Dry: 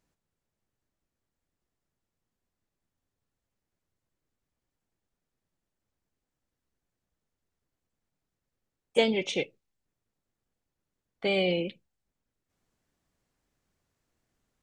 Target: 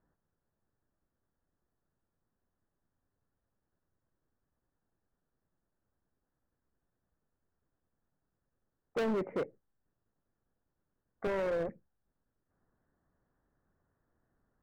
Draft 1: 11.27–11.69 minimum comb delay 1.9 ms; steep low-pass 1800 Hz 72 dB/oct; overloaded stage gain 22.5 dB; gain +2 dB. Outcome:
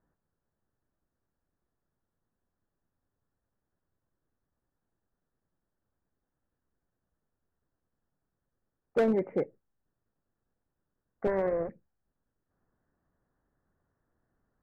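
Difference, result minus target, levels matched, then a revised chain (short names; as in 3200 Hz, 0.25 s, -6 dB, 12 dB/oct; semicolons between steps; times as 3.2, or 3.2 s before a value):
overloaded stage: distortion -6 dB
11.27–11.69 minimum comb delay 1.9 ms; steep low-pass 1800 Hz 72 dB/oct; overloaded stage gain 31.5 dB; gain +2 dB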